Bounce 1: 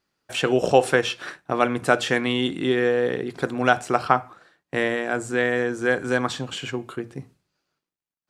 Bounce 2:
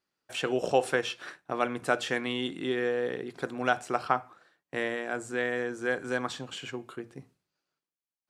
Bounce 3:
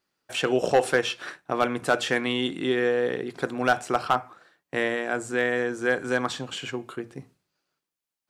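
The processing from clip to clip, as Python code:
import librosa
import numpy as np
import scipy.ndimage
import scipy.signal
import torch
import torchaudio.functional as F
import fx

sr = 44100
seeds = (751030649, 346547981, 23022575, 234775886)

y1 = fx.low_shelf(x, sr, hz=140.0, db=-7.5)
y1 = y1 * 10.0 ** (-7.5 / 20.0)
y2 = np.clip(10.0 ** (17.0 / 20.0) * y1, -1.0, 1.0) / 10.0 ** (17.0 / 20.0)
y2 = y2 * 10.0 ** (5.5 / 20.0)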